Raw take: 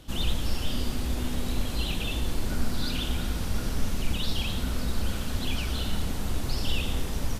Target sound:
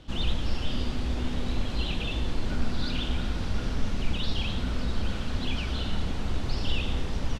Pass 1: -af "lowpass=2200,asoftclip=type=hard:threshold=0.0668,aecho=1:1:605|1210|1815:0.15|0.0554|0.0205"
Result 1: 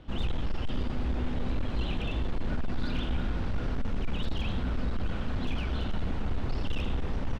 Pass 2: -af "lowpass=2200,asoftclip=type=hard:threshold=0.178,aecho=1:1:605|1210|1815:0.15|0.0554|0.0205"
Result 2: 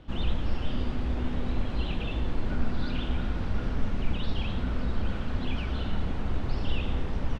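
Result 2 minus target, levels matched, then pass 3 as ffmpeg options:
4 kHz band -6.0 dB
-af "lowpass=4600,asoftclip=type=hard:threshold=0.178,aecho=1:1:605|1210|1815:0.15|0.0554|0.0205"

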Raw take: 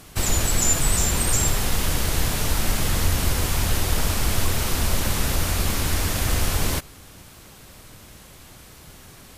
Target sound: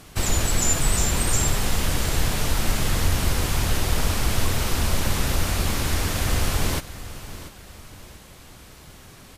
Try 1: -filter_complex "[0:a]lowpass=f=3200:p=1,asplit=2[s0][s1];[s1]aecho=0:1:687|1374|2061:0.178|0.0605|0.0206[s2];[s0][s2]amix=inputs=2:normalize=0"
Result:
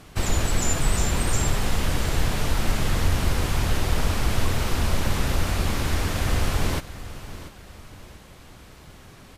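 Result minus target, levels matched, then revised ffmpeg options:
8 kHz band -4.0 dB
-filter_complex "[0:a]lowpass=f=8400:p=1,asplit=2[s0][s1];[s1]aecho=0:1:687|1374|2061:0.178|0.0605|0.0206[s2];[s0][s2]amix=inputs=2:normalize=0"

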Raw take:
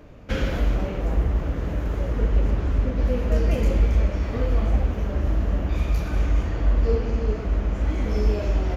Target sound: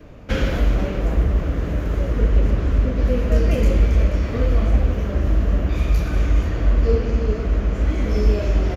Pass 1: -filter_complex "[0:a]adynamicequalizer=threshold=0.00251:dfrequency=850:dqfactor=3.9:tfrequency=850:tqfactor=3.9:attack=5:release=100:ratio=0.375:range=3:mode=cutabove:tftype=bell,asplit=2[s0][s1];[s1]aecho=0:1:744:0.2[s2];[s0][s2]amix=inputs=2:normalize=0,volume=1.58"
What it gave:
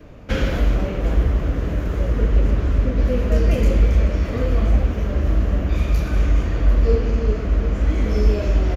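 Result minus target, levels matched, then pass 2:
echo 263 ms late
-filter_complex "[0:a]adynamicequalizer=threshold=0.00251:dfrequency=850:dqfactor=3.9:tfrequency=850:tqfactor=3.9:attack=5:release=100:ratio=0.375:range=3:mode=cutabove:tftype=bell,asplit=2[s0][s1];[s1]aecho=0:1:481:0.2[s2];[s0][s2]amix=inputs=2:normalize=0,volume=1.58"

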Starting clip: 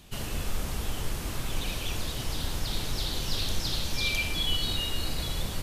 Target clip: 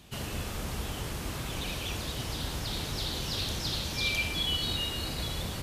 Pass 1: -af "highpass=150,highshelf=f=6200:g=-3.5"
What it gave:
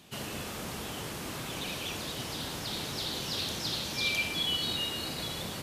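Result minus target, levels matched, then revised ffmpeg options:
125 Hz band -5.5 dB
-af "highpass=52,highshelf=f=6200:g=-3.5"

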